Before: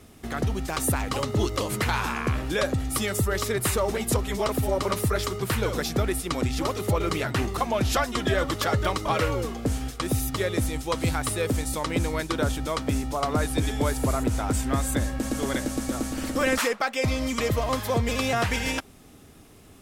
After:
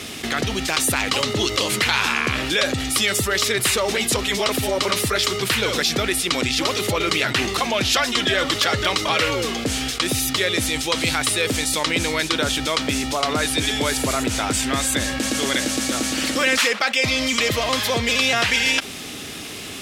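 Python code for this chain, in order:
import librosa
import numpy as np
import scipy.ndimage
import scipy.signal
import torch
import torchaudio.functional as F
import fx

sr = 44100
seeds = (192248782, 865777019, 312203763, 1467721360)

y = fx.weighting(x, sr, curve='D')
y = fx.env_flatten(y, sr, amount_pct=50)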